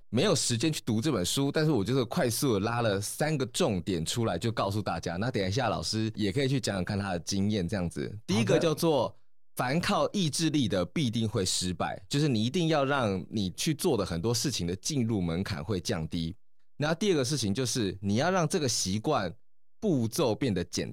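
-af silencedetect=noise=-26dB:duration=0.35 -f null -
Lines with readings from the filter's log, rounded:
silence_start: 9.07
silence_end: 9.59 | silence_duration: 0.52
silence_start: 16.27
silence_end: 16.80 | silence_duration: 0.53
silence_start: 19.28
silence_end: 19.84 | silence_duration: 0.56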